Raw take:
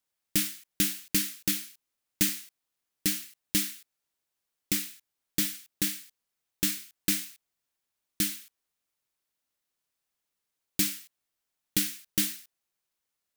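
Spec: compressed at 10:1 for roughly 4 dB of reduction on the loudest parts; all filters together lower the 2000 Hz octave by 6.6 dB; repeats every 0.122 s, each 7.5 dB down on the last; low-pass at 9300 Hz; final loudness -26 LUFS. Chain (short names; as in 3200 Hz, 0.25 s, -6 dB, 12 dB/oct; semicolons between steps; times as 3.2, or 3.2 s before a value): LPF 9300 Hz; bell 2000 Hz -8.5 dB; compressor 10:1, threshold -29 dBFS; feedback echo 0.122 s, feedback 42%, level -7.5 dB; gain +11.5 dB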